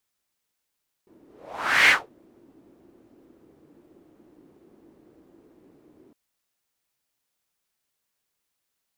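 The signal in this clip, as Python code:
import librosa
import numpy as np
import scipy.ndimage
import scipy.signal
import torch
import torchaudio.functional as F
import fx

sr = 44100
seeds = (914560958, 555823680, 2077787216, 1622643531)

y = fx.whoosh(sr, seeds[0], length_s=5.06, peak_s=0.82, rise_s=0.68, fall_s=0.22, ends_hz=320.0, peak_hz=2100.0, q=3.4, swell_db=39.5)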